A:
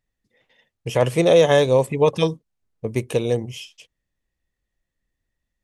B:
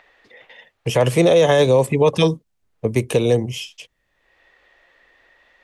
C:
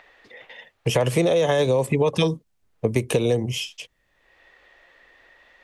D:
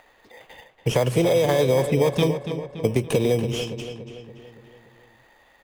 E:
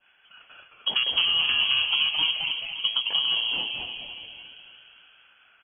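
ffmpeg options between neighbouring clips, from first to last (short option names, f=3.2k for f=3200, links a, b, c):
-filter_complex "[0:a]acrossover=split=240|410|3500[a][b][c][d];[c]acompressor=mode=upward:threshold=-40dB:ratio=2.5[e];[a][b][e][d]amix=inputs=4:normalize=0,alimiter=level_in=11dB:limit=-1dB:release=50:level=0:latency=1,volume=-5dB"
-af "acompressor=threshold=-18dB:ratio=6,volume=1.5dB"
-filter_complex "[0:a]asplit=2[a][b];[b]acrusher=samples=16:mix=1:aa=0.000001,volume=-4dB[c];[a][c]amix=inputs=2:normalize=0,asplit=2[d][e];[e]adelay=285,lowpass=f=4k:p=1,volume=-9dB,asplit=2[f][g];[g]adelay=285,lowpass=f=4k:p=1,volume=0.54,asplit=2[h][i];[i]adelay=285,lowpass=f=4k:p=1,volume=0.54,asplit=2[j][k];[k]adelay=285,lowpass=f=4k:p=1,volume=0.54,asplit=2[l][m];[m]adelay=285,lowpass=f=4k:p=1,volume=0.54,asplit=2[n][o];[o]adelay=285,lowpass=f=4k:p=1,volume=0.54[p];[d][f][h][j][l][n][p]amix=inputs=7:normalize=0,volume=-4dB"
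-filter_complex "[0:a]lowpass=f=2.9k:t=q:w=0.5098,lowpass=f=2.9k:t=q:w=0.6013,lowpass=f=2.9k:t=q:w=0.9,lowpass=f=2.9k:t=q:w=2.563,afreqshift=-3400,adynamicequalizer=threshold=0.02:dfrequency=2000:dqfactor=0.75:tfrequency=2000:tqfactor=0.75:attack=5:release=100:ratio=0.375:range=1.5:mode=cutabove:tftype=bell,asplit=6[a][b][c][d][e][f];[b]adelay=216,afreqshift=-140,volume=-4.5dB[g];[c]adelay=432,afreqshift=-280,volume=-12.5dB[h];[d]adelay=648,afreqshift=-420,volume=-20.4dB[i];[e]adelay=864,afreqshift=-560,volume=-28.4dB[j];[f]adelay=1080,afreqshift=-700,volume=-36.3dB[k];[a][g][h][i][j][k]amix=inputs=6:normalize=0,volume=-4dB"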